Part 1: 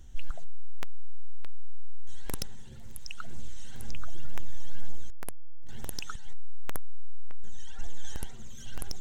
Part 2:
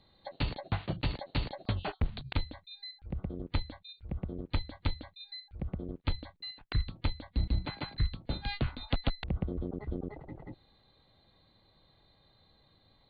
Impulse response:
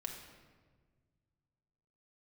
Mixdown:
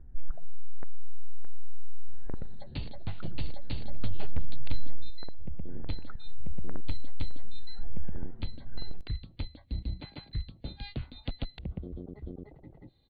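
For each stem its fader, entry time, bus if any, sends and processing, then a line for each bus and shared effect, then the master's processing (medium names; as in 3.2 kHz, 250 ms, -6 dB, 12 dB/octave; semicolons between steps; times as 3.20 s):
+0.5 dB, 0.00 s, no send, echo send -22.5 dB, steep low-pass 1.7 kHz 36 dB/octave
-4.5 dB, 2.35 s, send -23 dB, no echo send, none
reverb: on, RT60 1.5 s, pre-delay 4 ms
echo: feedback delay 117 ms, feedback 36%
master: peaking EQ 1.2 kHz -9.5 dB 1.6 oct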